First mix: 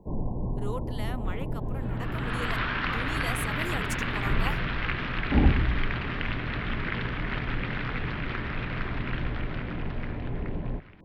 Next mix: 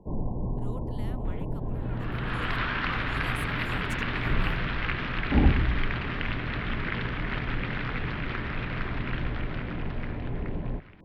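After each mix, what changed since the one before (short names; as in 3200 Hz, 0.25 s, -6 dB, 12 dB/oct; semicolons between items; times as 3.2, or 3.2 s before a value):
speech -9.5 dB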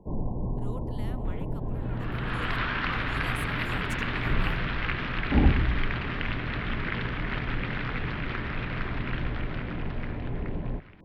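speech: send +9.5 dB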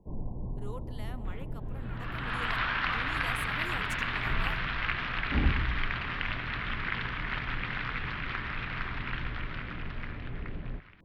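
first sound -10.0 dB; master: add low shelf 150 Hz +5.5 dB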